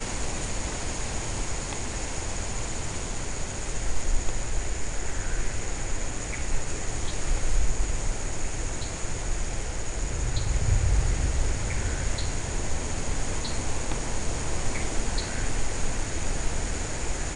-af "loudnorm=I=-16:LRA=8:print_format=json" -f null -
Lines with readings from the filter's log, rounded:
"input_i" : "-31.2",
"input_tp" : "-10.9",
"input_lra" : "3.3",
"input_thresh" : "-41.2",